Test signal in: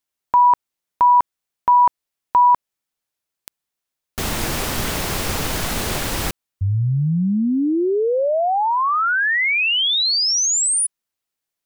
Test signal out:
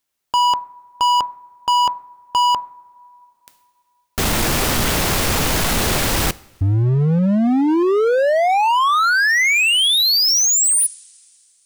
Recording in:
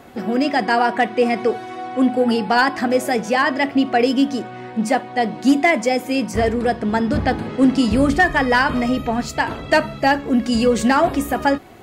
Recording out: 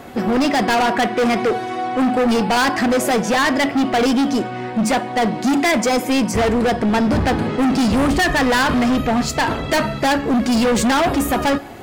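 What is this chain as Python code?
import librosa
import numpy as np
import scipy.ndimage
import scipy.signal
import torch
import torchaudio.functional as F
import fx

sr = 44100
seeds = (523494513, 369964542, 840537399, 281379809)

y = fx.rev_double_slope(x, sr, seeds[0], early_s=0.56, late_s=2.8, knee_db=-17, drr_db=20.0)
y = np.clip(y, -10.0 ** (-20.5 / 20.0), 10.0 ** (-20.5 / 20.0))
y = F.gain(torch.from_numpy(y), 6.5).numpy()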